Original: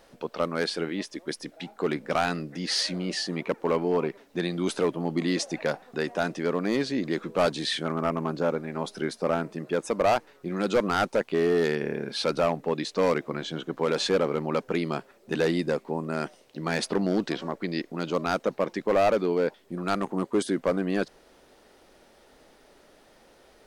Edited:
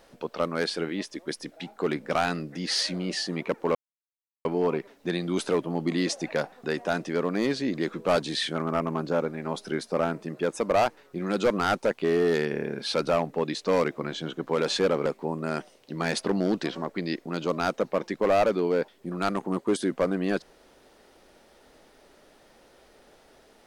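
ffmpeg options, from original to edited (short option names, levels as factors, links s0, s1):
-filter_complex "[0:a]asplit=3[s0][s1][s2];[s0]atrim=end=3.75,asetpts=PTS-STARTPTS,afade=t=out:st=3.746:d=0.004:c=hsin,apad=pad_dur=0.7[s3];[s1]atrim=start=3.75:end=14.362,asetpts=PTS-STARTPTS,afade=t=in:d=0.004:c=hsin[s4];[s2]atrim=start=15.718[s5];[s3][s4]concat=n=2:v=0:a=1[s6];[s6][s5]acrossfade=d=0.004:c1=hsin:c2=hsin"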